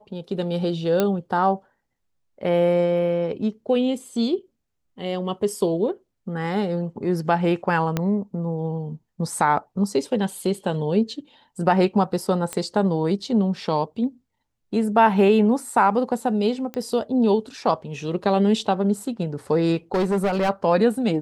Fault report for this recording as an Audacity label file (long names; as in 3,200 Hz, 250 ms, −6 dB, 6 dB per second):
1.000000	1.000000	click −7 dBFS
7.970000	7.970000	click −9 dBFS
12.530000	12.530000	click −13 dBFS
16.740000	16.740000	click −17 dBFS
19.940000	20.500000	clipping −17.5 dBFS